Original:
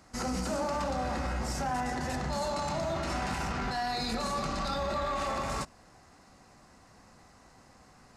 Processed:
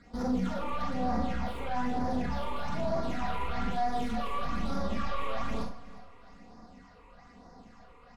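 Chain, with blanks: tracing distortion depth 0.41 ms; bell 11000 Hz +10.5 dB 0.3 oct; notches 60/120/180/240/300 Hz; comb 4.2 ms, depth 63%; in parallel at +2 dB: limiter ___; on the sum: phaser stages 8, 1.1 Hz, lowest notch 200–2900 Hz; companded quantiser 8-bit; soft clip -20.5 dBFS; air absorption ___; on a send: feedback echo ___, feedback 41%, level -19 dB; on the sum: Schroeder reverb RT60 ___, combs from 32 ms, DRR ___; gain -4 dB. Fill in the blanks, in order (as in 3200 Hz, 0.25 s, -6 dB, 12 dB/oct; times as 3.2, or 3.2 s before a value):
-28.5 dBFS, 160 m, 0.359 s, 0.31 s, 4 dB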